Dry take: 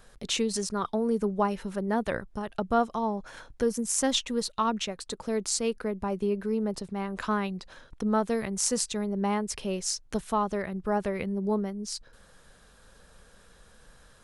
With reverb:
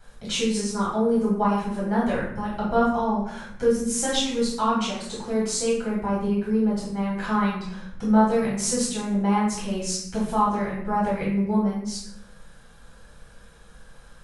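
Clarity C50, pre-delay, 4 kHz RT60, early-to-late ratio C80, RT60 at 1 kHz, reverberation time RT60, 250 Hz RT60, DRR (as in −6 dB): 2.0 dB, 5 ms, 0.50 s, 5.5 dB, 0.70 s, 0.70 s, 1.1 s, −7.0 dB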